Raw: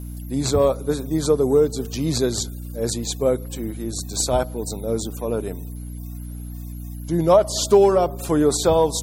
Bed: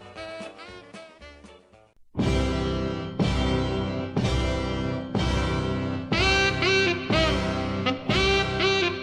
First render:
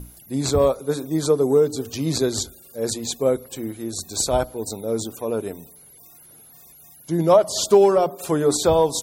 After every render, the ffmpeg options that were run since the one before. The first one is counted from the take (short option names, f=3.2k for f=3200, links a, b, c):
-af "bandreject=f=60:t=h:w=6,bandreject=f=120:t=h:w=6,bandreject=f=180:t=h:w=6,bandreject=f=240:t=h:w=6,bandreject=f=300:t=h:w=6"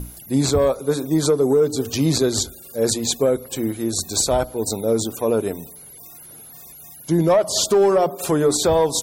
-af "acontrast=62,alimiter=limit=-9.5dB:level=0:latency=1:release=297"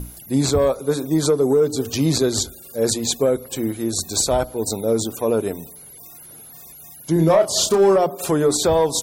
-filter_complex "[0:a]asettb=1/sr,asplit=3[a][b][c];[a]atrim=end=7.134[d];[b]atrim=start=7.13:end=7.96,asetpts=PTS-STARTPTS,afade=t=in:d=0.004:c=qsin,afade=t=out:st=0.826:d=0.004:c=qsin,asplit=2[e][f];[f]adelay=31,volume=-5.5dB[g];[e][g]amix=inputs=2:normalize=0,atrim=end_sample=36603[h];[c]atrim=start=7.956[i];[d][h]acrossfade=d=0.004:c1=hsin:c2=qsin[j];[j][i]acrossfade=d=0.004:c1=qsin:c2=hsin"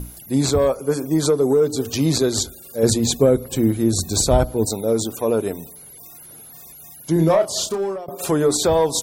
-filter_complex "[0:a]asettb=1/sr,asplit=3[a][b][c];[a]atrim=end=0.674[d];[b]atrim=start=0.67:end=1.2,asetpts=PTS-STARTPTS,afade=t=in:d=0.004:c=qsin,afade=t=out:st=0.526:d=0.004:c=qsin,asuperstop=centerf=3800:order=8:qfactor=4.9[e];[c]atrim=start=1.196[f];[d][e]acrossfade=d=0.004:c1=hsin:c2=qsin[g];[g][f]acrossfade=d=0.004:c1=qsin:c2=hsin,asettb=1/sr,asplit=3[h][i][j];[h]atrim=end=2.834[k];[i]atrim=start=2.83:end=4.66,asetpts=PTS-STARTPTS,afade=t=in:d=0.004:c=qsin,afade=t=out:st=1.826:d=0.004:c=qsin,lowshelf=f=270:g=11.5[l];[j]atrim=start=4.656[m];[k][l]acrossfade=d=0.004:c1=hsin:c2=qsin[n];[n][m]acrossfade=d=0.004:c1=qsin:c2=hsin,asplit=2[o][p];[o]atrim=end=8.08,asetpts=PTS-STARTPTS,afade=t=out:st=7.22:d=0.86:silence=0.0944061[q];[p]atrim=start=8.08,asetpts=PTS-STARTPTS,afade=t=in:d=0.004:c=hsin:silence=0.0944061[r];[q][r]concat=n=2:v=0:a=1"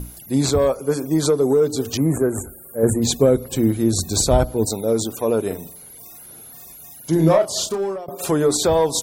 -filter_complex "[0:a]asettb=1/sr,asplit=3[a][b][c];[a]atrim=end=1.974[d];[b]atrim=start=1.97:end=3.02,asetpts=PTS-STARTPTS,afade=t=in:d=0.004:c=qsin,afade=t=out:st=1.046:d=0.004:c=qsin,asuperstop=centerf=4100:order=8:qfactor=0.64[e];[c]atrim=start=3.016[f];[d][e]acrossfade=d=0.004:c1=hsin:c2=qsin[g];[g][f]acrossfade=d=0.004:c1=qsin:c2=hsin,asettb=1/sr,asplit=3[h][i][j];[h]atrim=end=5.464[k];[i]atrim=start=5.46:end=7.38,asetpts=PTS-STARTPTS,afade=t=in:d=0.004:c=qsin,afade=t=out:st=1.916:d=0.004:c=qsin,asplit=2[l][m];[m]adelay=44,volume=-7dB[n];[l][n]amix=inputs=2:normalize=0,atrim=end_sample=84672[o];[j]atrim=start=7.376[p];[k][o]acrossfade=d=0.004:c1=hsin:c2=qsin[q];[q][p]acrossfade=d=0.004:c1=qsin:c2=hsin"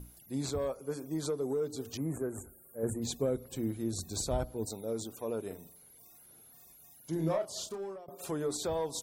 -af "volume=-16.5dB"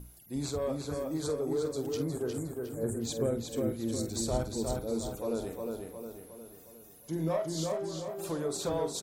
-filter_complex "[0:a]asplit=2[a][b];[b]adelay=48,volume=-11dB[c];[a][c]amix=inputs=2:normalize=0,asplit=2[d][e];[e]adelay=359,lowpass=f=4.6k:p=1,volume=-3dB,asplit=2[f][g];[g]adelay=359,lowpass=f=4.6k:p=1,volume=0.5,asplit=2[h][i];[i]adelay=359,lowpass=f=4.6k:p=1,volume=0.5,asplit=2[j][k];[k]adelay=359,lowpass=f=4.6k:p=1,volume=0.5,asplit=2[l][m];[m]adelay=359,lowpass=f=4.6k:p=1,volume=0.5,asplit=2[n][o];[o]adelay=359,lowpass=f=4.6k:p=1,volume=0.5,asplit=2[p][q];[q]adelay=359,lowpass=f=4.6k:p=1,volume=0.5[r];[d][f][h][j][l][n][p][r]amix=inputs=8:normalize=0"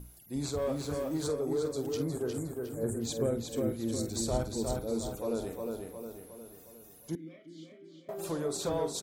-filter_complex "[0:a]asettb=1/sr,asplit=3[a][b][c];[a]atrim=end=0.574[d];[b]atrim=start=0.57:end=1.28,asetpts=PTS-STARTPTS,afade=t=in:d=0.004:c=qsin,afade=t=out:st=0.706:d=0.004:c=qsin,aeval=exprs='val(0)+0.5*0.00501*sgn(val(0))':c=same[e];[c]atrim=start=1.276[f];[d][e]acrossfade=d=0.004:c1=hsin:c2=qsin[g];[g][f]acrossfade=d=0.004:c1=qsin:c2=hsin,asettb=1/sr,asplit=3[h][i][j];[h]atrim=end=7.154[k];[i]atrim=start=7.15:end=8.09,asetpts=PTS-STARTPTS,afade=t=in:d=0.004:c=qsin,afade=t=out:st=0.936:d=0.004:c=qsin,asplit=3[l][m][n];[l]bandpass=f=270:t=q:w=8,volume=0dB[o];[m]bandpass=f=2.29k:t=q:w=8,volume=-6dB[p];[n]bandpass=f=3.01k:t=q:w=8,volume=-9dB[q];[o][p][q]amix=inputs=3:normalize=0[r];[j]atrim=start=8.086[s];[k][r]acrossfade=d=0.004:c1=hsin:c2=qsin[t];[t][s]acrossfade=d=0.004:c1=qsin:c2=hsin"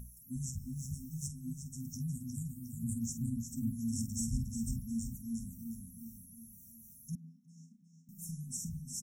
-af "afftfilt=real='re*(1-between(b*sr/4096,260,5300))':imag='im*(1-between(b*sr/4096,260,5300))':win_size=4096:overlap=0.75,adynamicequalizer=threshold=0.00178:dfrequency=6900:dqfactor=0.9:tfrequency=6900:tqfactor=0.9:attack=5:release=100:ratio=0.375:range=2:mode=cutabove:tftype=bell"